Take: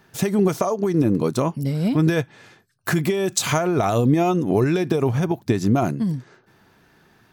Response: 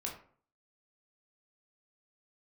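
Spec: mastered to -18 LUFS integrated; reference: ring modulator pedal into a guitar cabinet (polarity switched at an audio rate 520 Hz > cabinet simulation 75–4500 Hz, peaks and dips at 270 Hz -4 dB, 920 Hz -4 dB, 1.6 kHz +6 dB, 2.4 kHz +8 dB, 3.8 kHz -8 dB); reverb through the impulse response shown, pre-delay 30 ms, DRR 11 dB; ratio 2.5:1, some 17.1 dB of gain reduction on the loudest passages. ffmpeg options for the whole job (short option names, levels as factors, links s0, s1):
-filter_complex "[0:a]acompressor=threshold=0.00891:ratio=2.5,asplit=2[s0][s1];[1:a]atrim=start_sample=2205,adelay=30[s2];[s1][s2]afir=irnorm=-1:irlink=0,volume=0.282[s3];[s0][s3]amix=inputs=2:normalize=0,aeval=exprs='val(0)*sgn(sin(2*PI*520*n/s))':c=same,highpass=75,equalizer=f=270:t=q:w=4:g=-4,equalizer=f=920:t=q:w=4:g=-4,equalizer=f=1600:t=q:w=4:g=6,equalizer=f=2400:t=q:w=4:g=8,equalizer=f=3800:t=q:w=4:g=-8,lowpass=f=4500:w=0.5412,lowpass=f=4500:w=1.3066,volume=7.08"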